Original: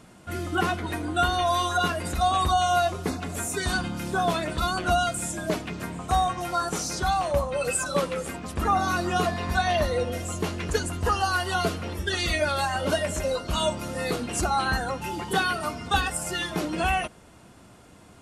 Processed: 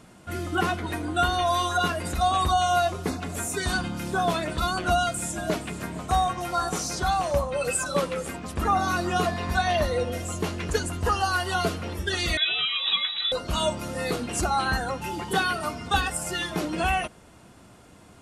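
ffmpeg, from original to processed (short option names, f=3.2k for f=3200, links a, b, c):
-filter_complex "[0:a]asettb=1/sr,asplit=3[a][b][c];[a]atrim=end=4.894[d];[b]atrim=start=4.89:end=7.38,asetpts=PTS-STARTPTS,afade=t=in:d=0.004:c=qsin,afade=t=out:st=2.486:d=0.004:c=qsin,aecho=1:1:469:0.168,atrim=end_sample=109809[e];[c]atrim=start=7.376[f];[d][e]acrossfade=d=0.004:c1=hsin:c2=qsin[g];[g][f]acrossfade=d=0.004:c1=qsin:c2=hsin,asettb=1/sr,asplit=3[h][i][j];[h]atrim=end=12.374[k];[i]atrim=start=12.37:end=13.32,asetpts=PTS-STARTPTS,afade=t=in:d=0.004:c=qsin,afade=t=out:st=0.946:d=0.004:c=qsin,lowpass=f=3.4k:t=q:w=0.5098,lowpass=f=3.4k:t=q:w=0.6013,lowpass=f=3.4k:t=q:w=0.9,lowpass=f=3.4k:t=q:w=2.563,afreqshift=-4000[l];[j]atrim=start=13.316[m];[k][l]acrossfade=d=0.004:c1=hsin:c2=qsin[n];[n][m]acrossfade=d=0.004:c1=qsin:c2=hsin"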